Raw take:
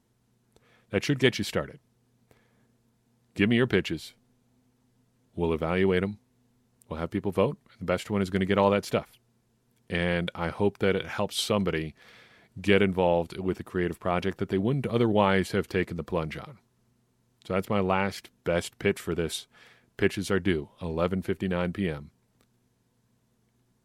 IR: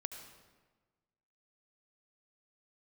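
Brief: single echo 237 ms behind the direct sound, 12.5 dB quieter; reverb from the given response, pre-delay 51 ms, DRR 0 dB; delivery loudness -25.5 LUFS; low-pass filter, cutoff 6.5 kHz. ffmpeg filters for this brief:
-filter_complex "[0:a]lowpass=6500,aecho=1:1:237:0.237,asplit=2[s0][s1];[1:a]atrim=start_sample=2205,adelay=51[s2];[s1][s2]afir=irnorm=-1:irlink=0,volume=1.26[s3];[s0][s3]amix=inputs=2:normalize=0,volume=0.944"

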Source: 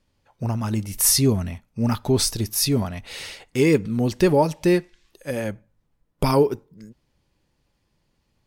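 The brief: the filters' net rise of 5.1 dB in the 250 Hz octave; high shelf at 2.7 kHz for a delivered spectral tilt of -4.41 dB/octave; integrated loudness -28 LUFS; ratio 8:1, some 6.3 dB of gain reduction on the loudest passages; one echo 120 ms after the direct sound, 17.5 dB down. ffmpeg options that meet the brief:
-af "equalizer=f=250:t=o:g=6.5,highshelf=f=2700:g=4,acompressor=threshold=0.158:ratio=8,aecho=1:1:120:0.133,volume=0.531"

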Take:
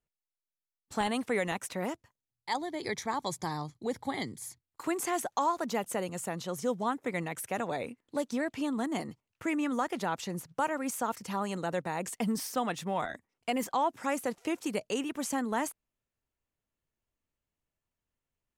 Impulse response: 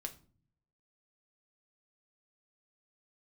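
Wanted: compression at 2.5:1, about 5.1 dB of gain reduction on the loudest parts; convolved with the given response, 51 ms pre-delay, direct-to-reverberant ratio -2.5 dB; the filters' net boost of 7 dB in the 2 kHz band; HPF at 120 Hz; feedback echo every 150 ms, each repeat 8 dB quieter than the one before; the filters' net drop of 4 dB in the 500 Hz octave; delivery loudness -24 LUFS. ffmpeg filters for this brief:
-filter_complex "[0:a]highpass=120,equalizer=f=500:t=o:g=-5.5,equalizer=f=2000:t=o:g=8.5,acompressor=threshold=0.0251:ratio=2.5,aecho=1:1:150|300|450|600|750:0.398|0.159|0.0637|0.0255|0.0102,asplit=2[s0][s1];[1:a]atrim=start_sample=2205,adelay=51[s2];[s1][s2]afir=irnorm=-1:irlink=0,volume=1.78[s3];[s0][s3]amix=inputs=2:normalize=0,volume=2.24"

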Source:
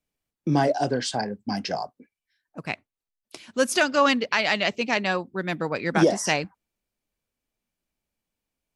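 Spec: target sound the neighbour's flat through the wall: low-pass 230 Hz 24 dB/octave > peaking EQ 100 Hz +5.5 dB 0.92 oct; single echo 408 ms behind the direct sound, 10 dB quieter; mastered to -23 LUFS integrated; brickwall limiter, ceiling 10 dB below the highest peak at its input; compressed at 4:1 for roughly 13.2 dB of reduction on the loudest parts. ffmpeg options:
-af "acompressor=threshold=0.0316:ratio=4,alimiter=limit=0.0668:level=0:latency=1,lowpass=f=230:w=0.5412,lowpass=f=230:w=1.3066,equalizer=f=100:t=o:w=0.92:g=5.5,aecho=1:1:408:0.316,volume=10"

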